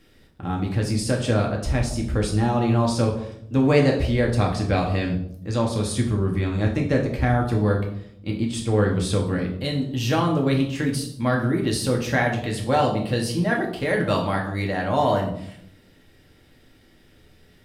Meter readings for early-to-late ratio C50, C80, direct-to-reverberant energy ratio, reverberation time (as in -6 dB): 8.0 dB, 11.0 dB, 0.0 dB, 0.70 s